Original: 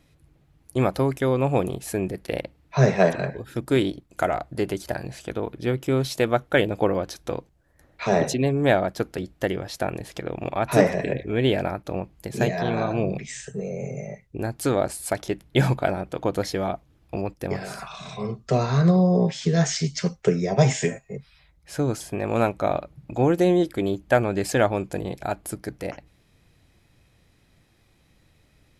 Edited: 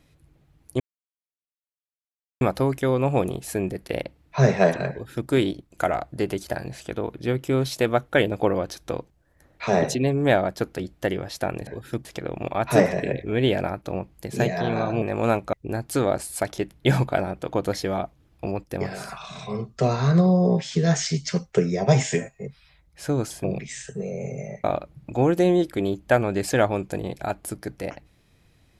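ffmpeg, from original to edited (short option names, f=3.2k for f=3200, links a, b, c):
-filter_complex "[0:a]asplit=8[a][b][c][d][e][f][g][h];[a]atrim=end=0.8,asetpts=PTS-STARTPTS,afade=t=out:st=0.796:d=0.004:c=hsin,apad=pad_dur=1.61[i];[b]atrim=start=0.8:end=10.062,asetpts=PTS-STARTPTS,afade=t=in:d=0.004:c=hsin[j];[c]atrim=start=3.298:end=3.682[k];[d]atrim=start=10.058:end=13.032[l];[e]atrim=start=22.138:end=22.652[m];[f]atrim=start=14.228:end=22.142[n];[g]atrim=start=13.028:end=14.232[o];[h]atrim=start=22.648[p];[i][j]concat=n=2:v=0:a=1[q];[q][k]acrossfade=d=0.004:c1=hsin:c2=hsin[r];[r][l]acrossfade=d=0.004:c1=hsin:c2=hsin[s];[s][m]acrossfade=d=0.004:c1=hsin:c2=hsin[t];[t][n]acrossfade=d=0.004:c1=hsin:c2=hsin[u];[u][o]acrossfade=d=0.004:c1=hsin:c2=hsin[v];[v][p]acrossfade=d=0.004:c1=hsin:c2=hsin"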